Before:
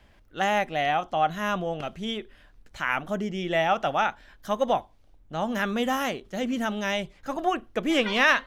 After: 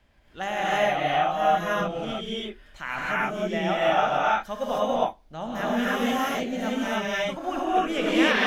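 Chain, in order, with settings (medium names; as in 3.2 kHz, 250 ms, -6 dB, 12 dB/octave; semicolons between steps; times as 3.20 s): gated-style reverb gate 340 ms rising, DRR -7.5 dB; trim -6.5 dB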